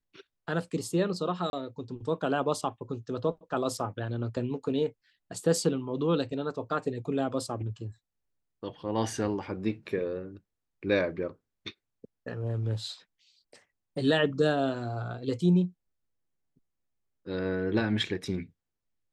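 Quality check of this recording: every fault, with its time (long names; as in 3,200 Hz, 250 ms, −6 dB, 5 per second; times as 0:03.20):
0:01.50–0:01.53: drop-out 31 ms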